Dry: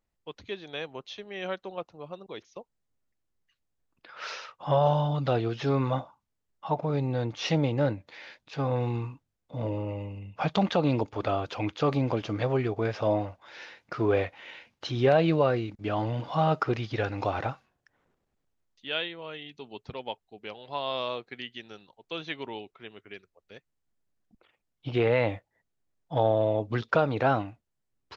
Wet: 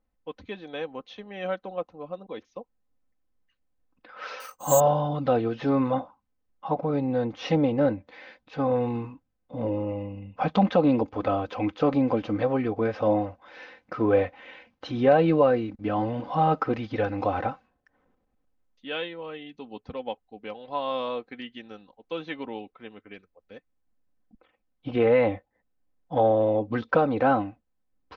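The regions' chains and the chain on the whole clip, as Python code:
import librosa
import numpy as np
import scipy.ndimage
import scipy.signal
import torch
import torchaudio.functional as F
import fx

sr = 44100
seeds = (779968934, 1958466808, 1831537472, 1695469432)

y = fx.chain(x, sr, fx.high_shelf(hz=3400.0, db=5.5),
    fx.resample_bad(factor=6, down='filtered', up='zero_stuff'), at=(4.4, 4.8))
y = fx.lowpass(y, sr, hz=1300.0, slope=6)
y = y + 0.61 * np.pad(y, (int(3.9 * sr / 1000.0), 0))[:len(y)]
y = y * librosa.db_to_amplitude(3.0)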